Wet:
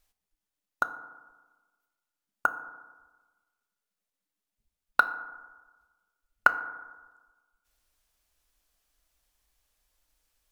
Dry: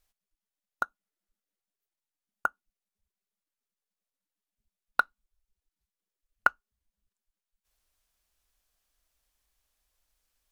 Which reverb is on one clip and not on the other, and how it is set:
feedback delay network reverb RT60 1.3 s, low-frequency decay 1×, high-frequency decay 0.35×, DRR 9 dB
level +2.5 dB

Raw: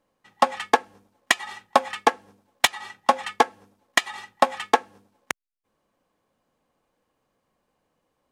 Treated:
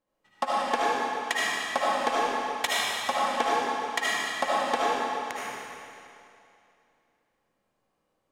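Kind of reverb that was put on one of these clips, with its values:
comb and all-pass reverb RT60 2.6 s, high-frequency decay 0.95×, pre-delay 35 ms, DRR −8 dB
level −11 dB

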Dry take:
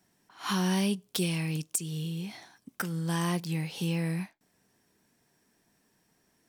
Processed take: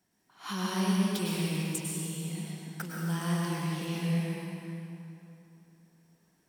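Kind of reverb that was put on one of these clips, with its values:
dense smooth reverb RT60 3.1 s, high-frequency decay 0.7×, pre-delay 90 ms, DRR −4 dB
level −6.5 dB

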